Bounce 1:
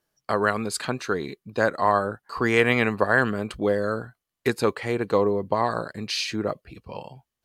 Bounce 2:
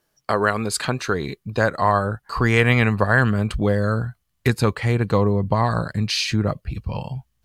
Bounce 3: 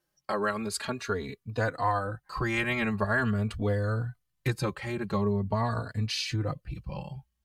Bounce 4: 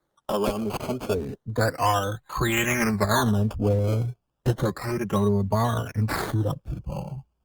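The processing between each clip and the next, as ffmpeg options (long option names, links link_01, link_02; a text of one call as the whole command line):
ffmpeg -i in.wav -filter_complex "[0:a]asubboost=boost=7:cutoff=140,asplit=2[link_01][link_02];[link_02]acompressor=threshold=-29dB:ratio=6,volume=-0.5dB[link_03];[link_01][link_03]amix=inputs=2:normalize=0,volume=1dB" out.wav
ffmpeg -i in.wav -filter_complex "[0:a]asplit=2[link_01][link_02];[link_02]adelay=3.4,afreqshift=0.44[link_03];[link_01][link_03]amix=inputs=2:normalize=1,volume=-6dB" out.wav
ffmpeg -i in.wav -filter_complex "[0:a]acrossover=split=170|990[link_01][link_02][link_03];[link_03]acrusher=samples=16:mix=1:aa=0.000001:lfo=1:lforange=16:lforate=0.32[link_04];[link_01][link_02][link_04]amix=inputs=3:normalize=0,volume=5.5dB" -ar 48000 -c:a libopus -b:a 24k out.opus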